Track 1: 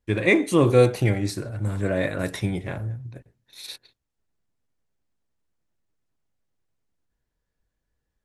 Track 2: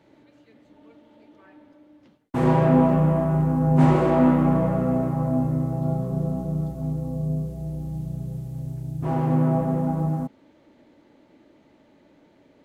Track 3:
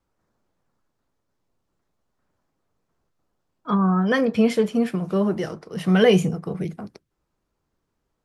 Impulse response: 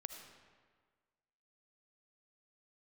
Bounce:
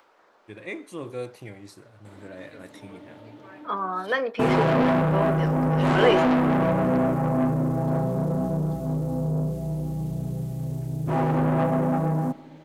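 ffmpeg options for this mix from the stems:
-filter_complex "[0:a]adelay=400,volume=-16dB[a];[1:a]acontrast=75,asoftclip=type=tanh:threshold=-16.5dB,adelay=2050,volume=-1.5dB,asplit=2[b][c];[c]volume=-8dB[d];[2:a]acrossover=split=380 4200:gain=0.0631 1 0.141[e][f][g];[e][f][g]amix=inputs=3:normalize=0,acompressor=mode=upward:threshold=-40dB:ratio=2.5,volume=-1dB[h];[3:a]atrim=start_sample=2205[i];[d][i]afir=irnorm=-1:irlink=0[j];[a][b][h][j]amix=inputs=4:normalize=0,lowshelf=f=120:g=-11.5"

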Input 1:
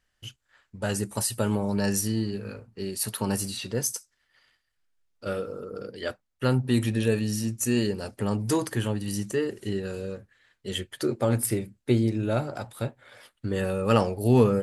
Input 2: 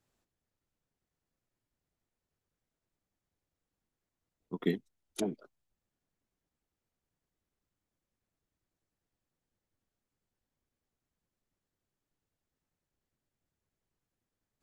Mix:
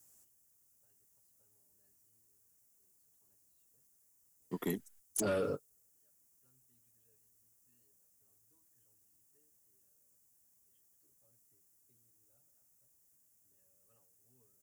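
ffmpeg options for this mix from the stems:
-filter_complex "[0:a]aecho=1:1:7.1:0.67,volume=2dB[a];[1:a]highpass=50,aexciter=amount=8:drive=8.1:freq=5.8k,volume=1dB,asplit=2[b][c];[c]apad=whole_len=645284[d];[a][d]sidechaingate=range=-59dB:threshold=-59dB:ratio=16:detection=peak[e];[e][b]amix=inputs=2:normalize=0,asoftclip=type=tanh:threshold=-21.5dB,alimiter=level_in=3.5dB:limit=-24dB:level=0:latency=1:release=35,volume=-3.5dB"

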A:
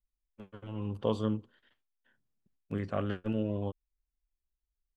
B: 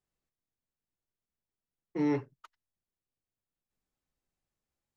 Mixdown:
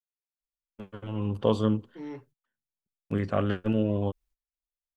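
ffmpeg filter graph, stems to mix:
-filter_complex "[0:a]adelay=400,volume=1dB[a];[1:a]bandreject=f=50:t=h:w=6,bandreject=f=100:t=h:w=6,bandreject=f=150:t=h:w=6,volume=-16dB[b];[a][b]amix=inputs=2:normalize=0,acontrast=33,agate=range=-23dB:threshold=-57dB:ratio=16:detection=peak"

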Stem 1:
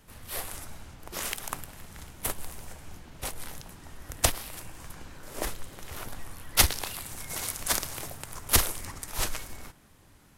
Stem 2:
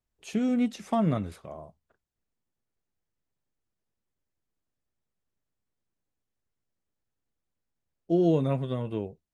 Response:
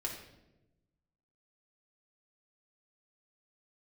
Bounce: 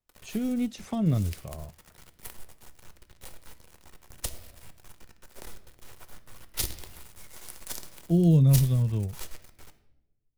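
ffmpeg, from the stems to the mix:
-filter_complex "[0:a]acrusher=bits=4:dc=4:mix=0:aa=0.000001,volume=-12.5dB,asplit=2[a][b];[b]volume=-4.5dB[c];[1:a]asubboost=boost=11:cutoff=100,dynaudnorm=f=110:g=17:m=4dB,volume=-1dB[d];[2:a]atrim=start_sample=2205[e];[c][e]afir=irnorm=-1:irlink=0[f];[a][d][f]amix=inputs=3:normalize=0,acrossover=split=450|3000[g][h][i];[h]acompressor=threshold=-47dB:ratio=3[j];[g][j][i]amix=inputs=3:normalize=0"

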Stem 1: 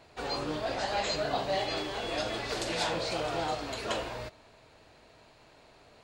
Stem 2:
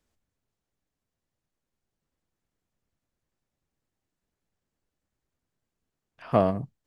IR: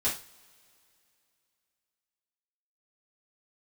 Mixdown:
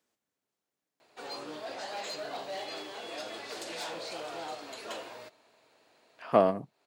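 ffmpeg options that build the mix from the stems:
-filter_complex "[0:a]highshelf=f=11k:g=9,asoftclip=type=hard:threshold=-26.5dB,adelay=1000,volume=-6.5dB[a];[1:a]volume=0dB,asplit=2[b][c];[c]apad=whole_len=310166[d];[a][d]sidechaincompress=threshold=-41dB:ratio=6:attack=44:release=356[e];[e][b]amix=inputs=2:normalize=0,highpass=260"

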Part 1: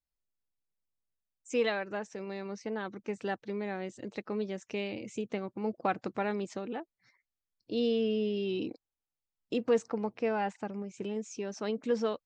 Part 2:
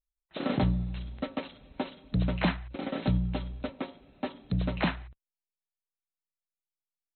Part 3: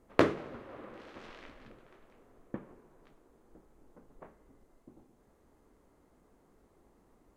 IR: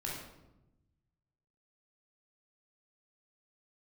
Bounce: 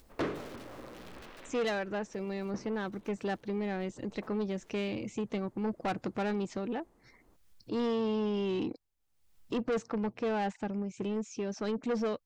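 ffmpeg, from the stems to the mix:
-filter_complex "[0:a]lowshelf=f=140:g=11,acompressor=mode=upward:threshold=-46dB:ratio=2.5,volume=2dB,asplit=2[a][b];[1:a]acompressor=threshold=-37dB:ratio=6,aeval=exprs='(mod(89.1*val(0)+1,2)-1)/89.1':c=same,volume=-9dB[c];[2:a]volume=-1.5dB,asplit=2[d][e];[e]volume=-16.5dB[f];[b]apad=whole_len=315382[g];[c][g]sidechaincompress=threshold=-47dB:ratio=12:attack=30:release=488[h];[3:a]atrim=start_sample=2205[i];[f][i]afir=irnorm=-1:irlink=0[j];[a][h][d][j]amix=inputs=4:normalize=0,acrossover=split=6100[k][l];[l]acompressor=threshold=-57dB:ratio=4:attack=1:release=60[m];[k][m]amix=inputs=2:normalize=0,asoftclip=type=tanh:threshold=-27dB"

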